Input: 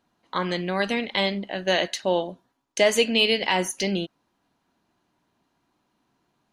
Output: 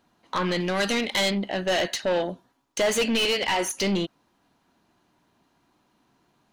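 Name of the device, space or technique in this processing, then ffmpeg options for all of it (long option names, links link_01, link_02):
saturation between pre-emphasis and de-emphasis: -filter_complex "[0:a]asettb=1/sr,asplit=3[link_01][link_02][link_03];[link_01]atrim=end=3.254[link_04];[link_02]atrim=start=3.25:end=3.75,asetpts=PTS-STARTPTS,afade=type=in:duration=0.004:curve=qsin,afade=type=out:start_time=0.496:duration=0.004:curve=qsin,highpass=310[link_05];[link_03]atrim=start=3.746[link_06];[link_04][link_05]acrossfade=duration=0.004:curve1=hsin:curve2=qsin[link_07];[link_07][link_06]acrossfade=duration=0.004:curve1=qsin:curve2=hsin,highshelf=frequency=6600:gain=9.5,asoftclip=type=tanh:threshold=-24dB,highshelf=frequency=6600:gain=-9.5,asettb=1/sr,asplit=3[link_08][link_09][link_10];[link_08]atrim=end=0.604[link_11];[link_09]atrim=start=0.6:end=1.31,asetpts=PTS-STARTPTS,afade=type=in:duration=0.004:curve=qsin,afade=type=out:start_time=0.706:duration=0.004:curve=qsin,bass=frequency=250:gain=-2,treble=frequency=4000:gain=8[link_12];[link_10]atrim=start=1.306[link_13];[link_11][link_12]acrossfade=duration=0.004:curve1=hsin:curve2=qsin[link_14];[link_14][link_13]acrossfade=duration=0.004:curve1=qsin:curve2=hsin,volume=5dB"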